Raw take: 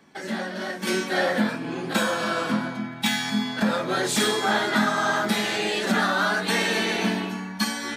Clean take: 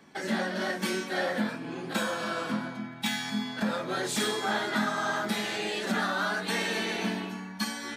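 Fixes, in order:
level correction −6.5 dB, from 0:00.87

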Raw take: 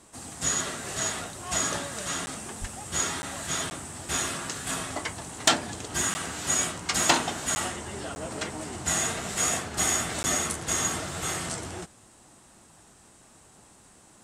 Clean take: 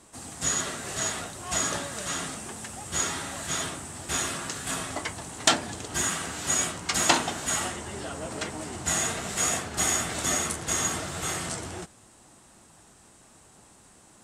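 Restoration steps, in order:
clipped peaks rebuilt −8 dBFS
0:02.60–0:02.72: high-pass filter 140 Hz 24 dB per octave
repair the gap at 0:02.26/0:03.22/0:03.70/0:06.14/0:07.55/0:08.15/0:10.23, 10 ms

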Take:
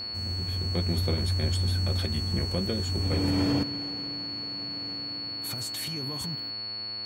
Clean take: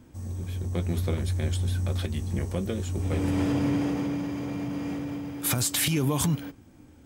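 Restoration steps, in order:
hum removal 110 Hz, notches 27
notch filter 4,400 Hz, Q 30
level 0 dB, from 0:03.63 +12 dB

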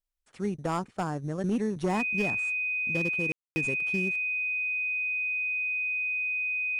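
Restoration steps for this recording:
clipped peaks rebuilt −21.5 dBFS
notch filter 2,500 Hz, Q 30
ambience match 0:03.32–0:03.56

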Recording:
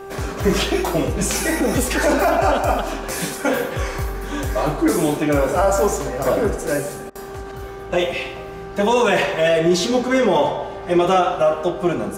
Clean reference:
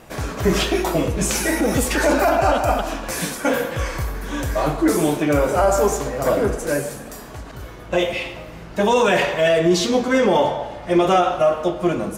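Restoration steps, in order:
hum removal 391.9 Hz, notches 4
repair the gap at 0:07.10, 52 ms

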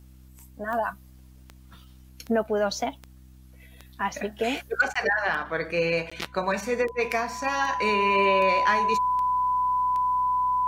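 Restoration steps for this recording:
click removal
hum removal 63.9 Hz, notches 5
notch filter 1,000 Hz, Q 30
repair the gap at 0:04.94/0:06.10, 15 ms

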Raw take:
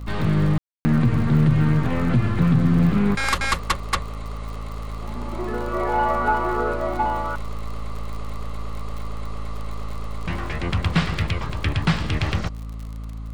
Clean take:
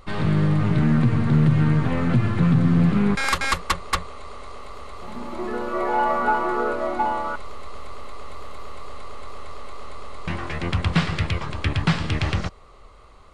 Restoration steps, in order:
click removal
hum removal 54.7 Hz, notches 5
ambience match 0:00.58–0:00.85

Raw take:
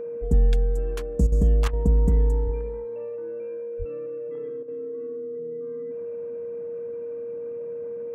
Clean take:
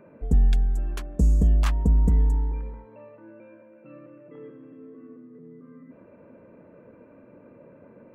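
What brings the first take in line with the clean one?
notch filter 470 Hz, Q 30
0:01.85–0:01.97: high-pass filter 140 Hz 24 dB per octave
0:02.44–0:02.56: high-pass filter 140 Hz 24 dB per octave
0:03.78–0:03.90: high-pass filter 140 Hz 24 dB per octave
repair the gap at 0:01.27/0:01.68/0:04.63, 50 ms

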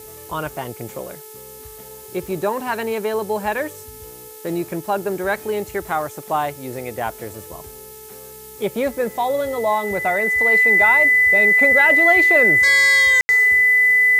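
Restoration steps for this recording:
hum removal 433 Hz, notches 8
notch filter 2,000 Hz, Q 30
ambience match 0:13.21–0:13.29
noise reduction from a noise print 24 dB

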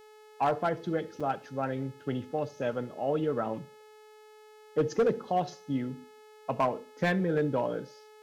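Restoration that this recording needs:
clipped peaks rebuilt −19.5 dBFS
hum removal 428.4 Hz, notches 38
repair the gap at 0:01.20, 5.1 ms
echo removal 71 ms −22.5 dB

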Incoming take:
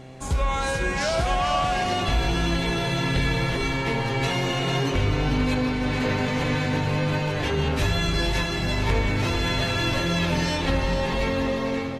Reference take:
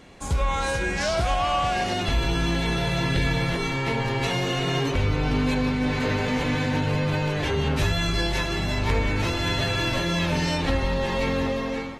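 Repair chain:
hum removal 130.3 Hz, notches 6
echo removal 449 ms −9 dB

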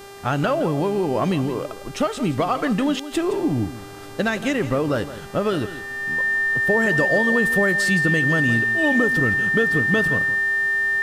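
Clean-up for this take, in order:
hum removal 397.3 Hz, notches 36
notch filter 1,800 Hz, Q 30
echo removal 167 ms −13.5 dB

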